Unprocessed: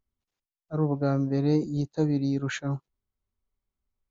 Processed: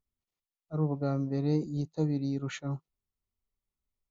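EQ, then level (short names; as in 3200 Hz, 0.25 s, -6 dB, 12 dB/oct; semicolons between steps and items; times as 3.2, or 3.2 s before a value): Butterworth band-stop 1600 Hz, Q 5.8; bell 160 Hz +4.5 dB 0.22 oct; -5.5 dB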